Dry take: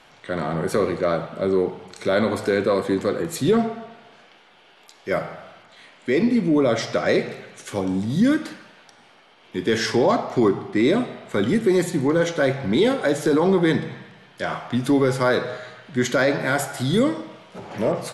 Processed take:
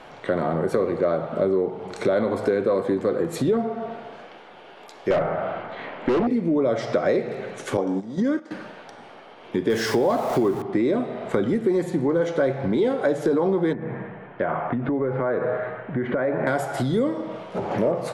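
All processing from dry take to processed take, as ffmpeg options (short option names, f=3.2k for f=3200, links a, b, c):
-filter_complex "[0:a]asettb=1/sr,asplit=3[a][b][c];[a]atrim=end=5.104[d];[b]atrim=start=5.1:end=6.27,asetpts=PTS-STARTPTS,afade=t=in:d=0.004:c=qsin,afade=t=out:st=1.166:d=0.004:c=qsin,lowpass=2.6k,aeval=exprs='(tanh(11.2*val(0)+0.65)-tanh(0.65))/11.2':c=same,aeval=exprs='0.178*sin(PI/2*2.24*val(0)/0.178)':c=same[e];[c]atrim=start=6.266[f];[d][e]acrossfade=d=0.004:c1=hsin:c2=qsin[g];[g][f]acrossfade=d=0.004:c1=qsin:c2=hsin,asettb=1/sr,asplit=3[h][i][j];[h]atrim=end=7.774[k];[i]atrim=start=7.77:end=8.51,asetpts=PTS-STARTPTS,afade=t=in:d=0.004:c=qsin,afade=t=out:st=0.736:d=0.004:c=qsin,highpass=260,equalizer=f=2.6k:t=q:w=4:g=-5,equalizer=f=4k:t=q:w=4:g=-5,equalizer=f=5.9k:t=q:w=4:g=3,lowpass=f=8.2k:w=0.5412,lowpass=f=8.2k:w=1.3066,agate=range=-12dB:threshold=-28dB:ratio=16:release=100:detection=peak[l];[j]atrim=start=8.506[m];[k][l]acrossfade=d=0.004:c1=hsin:c2=qsin[n];[n][m]acrossfade=d=0.004:c1=qsin:c2=hsin,asettb=1/sr,asplit=3[o][p][q];[o]atrim=end=9.704[r];[p]atrim=start=9.7:end=10.62,asetpts=PTS-STARTPTS,afade=t=in:d=0.004:c=qsin,afade=t=out:st=0.916:d=0.004:c=qsin,aeval=exprs='val(0)+0.5*0.0398*sgn(val(0))':c=same,aemphasis=mode=production:type=cd[s];[q]atrim=start=10.616[t];[r][s]acrossfade=d=0.004:c1=hsin:c2=qsin[u];[u][t]acrossfade=d=0.004:c1=qsin:c2=hsin,asettb=1/sr,asplit=3[v][w][x];[v]atrim=end=13.734[y];[w]atrim=start=13.73:end=16.47,asetpts=PTS-STARTPTS,afade=t=in:d=0.004:c=qsin,afade=t=out:st=2.736:d=0.004:c=qsin,lowpass=f=2.3k:w=0.5412,lowpass=f=2.3k:w=1.3066,acompressor=threshold=-26dB:ratio=4:attack=3.2:release=140:knee=1:detection=peak[z];[x]atrim=start=16.466[aa];[y][z]acrossfade=d=0.004:c1=hsin:c2=qsin[ab];[ab][aa]acrossfade=d=0.004:c1=qsin:c2=hsin,highshelf=f=2.4k:g=-9.5,acompressor=threshold=-32dB:ratio=4,equalizer=f=540:w=0.67:g=5.5,volume=7dB"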